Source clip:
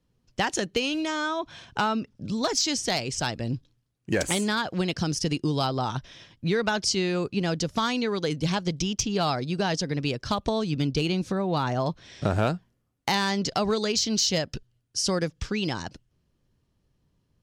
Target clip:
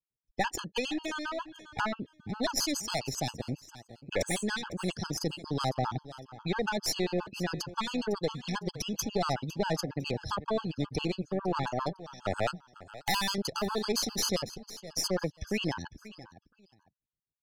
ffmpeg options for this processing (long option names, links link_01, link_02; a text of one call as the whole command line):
ffmpeg -i in.wav -filter_complex "[0:a]aeval=exprs='if(lt(val(0),0),0.708*val(0),val(0))':channel_layout=same,asettb=1/sr,asplit=3[link_01][link_02][link_03];[link_01]atrim=end=11.634[link_04];[link_02]atrim=start=11.63:end=13.38,asetpts=PTS-STARTPTS,afade=type=in:duration=0.004:curve=qsin,afade=type=out:start_time=1.746:duration=0.004:curve=qsin,aemphasis=mode=production:type=bsi[link_05];[link_03]atrim=start=13.376[link_06];[link_04][link_05]acrossfade=duration=0.004:curve1=hsin:curve2=qsin[link_07];[link_07][link_06]acrossfade=duration=0.004:curve1=qsin:curve2=hsin,afftdn=noise_reduction=26:noise_floor=-41,adynamicequalizer=threshold=0.00501:dfrequency=2200:dqfactor=1.3:tfrequency=2200:tqfactor=1.3:attack=5:release=100:ratio=0.375:range=1.5:mode=cutabove:tftype=bell,acrossover=split=300|4200[link_08][link_09][link_10];[link_08]alimiter=level_in=6dB:limit=-24dB:level=0:latency=1:release=43,volume=-6dB[link_11];[link_11][link_09][link_10]amix=inputs=3:normalize=0,aeval=exprs='(tanh(14.1*val(0)+0.75)-tanh(0.75))/14.1':channel_layout=same,asplit=2[link_12][link_13];[link_13]aecho=0:1:505|1010:0.158|0.0365[link_14];[link_12][link_14]amix=inputs=2:normalize=0,afftfilt=real='re*gt(sin(2*PI*7.4*pts/sr)*(1-2*mod(floor(b*sr/1024/850),2)),0)':imag='im*gt(sin(2*PI*7.4*pts/sr)*(1-2*mod(floor(b*sr/1024/850),2)),0)':win_size=1024:overlap=0.75,volume=4.5dB" out.wav